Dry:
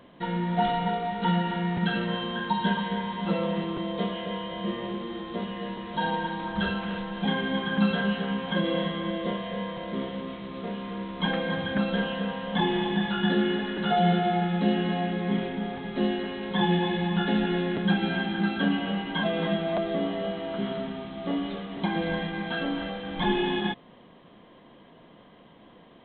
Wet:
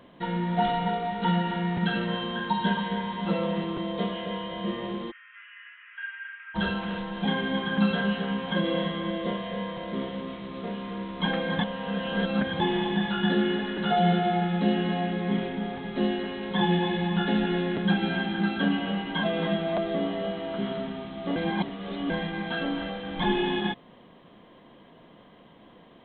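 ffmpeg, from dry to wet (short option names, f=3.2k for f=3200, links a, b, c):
-filter_complex "[0:a]asplit=3[a][b][c];[a]afade=t=out:st=5.1:d=0.02[d];[b]asuperpass=centerf=1900:order=12:qfactor=1.3,afade=t=in:st=5.1:d=0.02,afade=t=out:st=6.54:d=0.02[e];[c]afade=t=in:st=6.54:d=0.02[f];[d][e][f]amix=inputs=3:normalize=0,asplit=5[g][h][i][j][k];[g]atrim=end=11.592[l];[h]atrim=start=11.588:end=12.602,asetpts=PTS-STARTPTS,areverse[m];[i]atrim=start=12.598:end=21.362[n];[j]atrim=start=21.358:end=22.102,asetpts=PTS-STARTPTS,areverse[o];[k]atrim=start=22.098[p];[l][m]acrossfade=d=0.004:c1=hsin:c2=hsin[q];[q][n]acrossfade=d=0.004:c1=hsin:c2=hsin[r];[r][o]acrossfade=d=0.004:c1=hsin:c2=hsin[s];[s][p]acrossfade=d=0.004:c1=hsin:c2=hsin"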